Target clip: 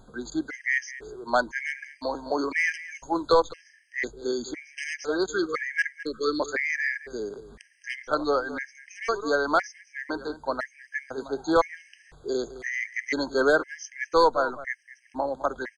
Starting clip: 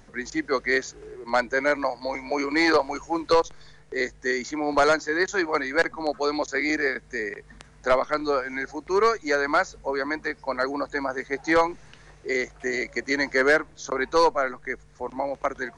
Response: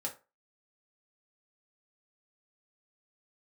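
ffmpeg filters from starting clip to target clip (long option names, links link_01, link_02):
-filter_complex "[0:a]asettb=1/sr,asplit=3[link_01][link_02][link_03];[link_01]atrim=end=5.284[link_04];[link_02]atrim=start=5.28:end=6.4,asetpts=PTS-STARTPTS,afade=type=in:duration=0.004:curve=qsin,afade=type=out:start_time=1.116:duration=0.004:curve=qsin,asuperstop=centerf=770:order=12:qfactor=1.2[link_05];[link_03]atrim=start=6.396[link_06];[link_04][link_05]acrossfade=duration=0.004:curve1=hsin:curve2=qsin[link_07];[link_07][link_06]acrossfade=duration=0.004:curve1=qsin:curve2=hsin,asplit=2[link_08][link_09];[link_09]adelay=209.9,volume=-15dB,highshelf=frequency=4000:gain=-4.72[link_10];[link_08][link_10]amix=inputs=2:normalize=0,afftfilt=real='re*gt(sin(2*PI*0.99*pts/sr)*(1-2*mod(floor(b*sr/1024/1600),2)),0)':imag='im*gt(sin(2*PI*0.99*pts/sr)*(1-2*mod(floor(b*sr/1024/1600),2)),0)':win_size=1024:overlap=0.75"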